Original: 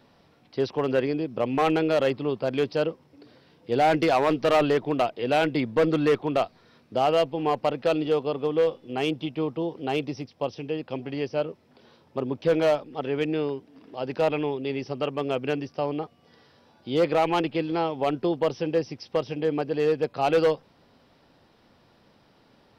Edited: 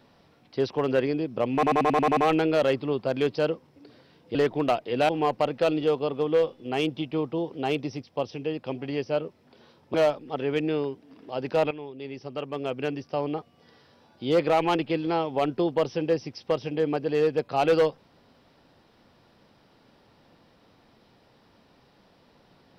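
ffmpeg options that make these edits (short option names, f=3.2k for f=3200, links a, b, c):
-filter_complex "[0:a]asplit=12[a][b][c][d][e][f][g][h][i][j][k][l];[a]atrim=end=1.632[m];[b]atrim=start=1.538:end=1.632[n];[c]atrim=start=1.538:end=1.632[o];[d]atrim=start=1.538:end=1.632[p];[e]atrim=start=1.538:end=1.632[q];[f]atrim=start=1.538:end=1.632[r];[g]atrim=start=1.538:end=1.632[s];[h]atrim=start=1.538:end=3.722[t];[i]atrim=start=4.658:end=5.402[u];[j]atrim=start=7.328:end=12.182[v];[k]atrim=start=12.588:end=14.36,asetpts=PTS-STARTPTS,afade=t=out:st=1.768:d=0.004:c=hsin:silence=0.223872[w];[l]atrim=start=14.36,asetpts=PTS-STARTPTS,afade=t=in:d=1.62:silence=0.223872[x];[m][n]acrossfade=d=0.004:c1=hsin:c2=hsin[y];[y][o]acrossfade=d=0.004:c1=hsin:c2=hsin[z];[z][p]acrossfade=d=0.004:c1=hsin:c2=hsin[aa];[aa][q]acrossfade=d=0.004:c1=hsin:c2=hsin[ab];[ab][r]acrossfade=d=0.004:c1=hsin:c2=hsin[ac];[ac][s]acrossfade=d=0.004:c1=hsin:c2=hsin[ad];[ad][t]acrossfade=d=0.004:c1=hsin:c2=hsin[ae];[ae][u]acrossfade=d=0.004:c1=hsin:c2=hsin[af];[af][v]acrossfade=d=0.004:c1=hsin:c2=hsin[ag];[w][x]concat=n=2:v=0:a=1[ah];[ag][ah]acrossfade=d=0.004:c1=hsin:c2=hsin"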